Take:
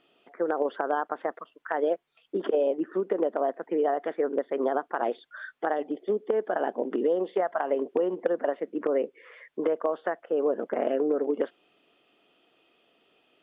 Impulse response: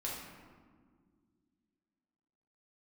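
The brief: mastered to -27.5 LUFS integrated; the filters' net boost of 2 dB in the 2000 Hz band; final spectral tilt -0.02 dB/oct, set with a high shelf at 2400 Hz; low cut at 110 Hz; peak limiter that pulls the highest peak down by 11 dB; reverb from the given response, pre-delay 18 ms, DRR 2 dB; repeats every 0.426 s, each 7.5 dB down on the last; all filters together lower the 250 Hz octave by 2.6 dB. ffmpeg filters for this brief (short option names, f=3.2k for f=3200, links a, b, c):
-filter_complex "[0:a]highpass=110,equalizer=f=250:t=o:g=-3.5,equalizer=f=2k:t=o:g=4.5,highshelf=f=2.4k:g=-4,alimiter=limit=-21dB:level=0:latency=1,aecho=1:1:426|852|1278|1704|2130:0.422|0.177|0.0744|0.0312|0.0131,asplit=2[a][b];[1:a]atrim=start_sample=2205,adelay=18[c];[b][c]afir=irnorm=-1:irlink=0,volume=-4dB[d];[a][d]amix=inputs=2:normalize=0,volume=1.5dB"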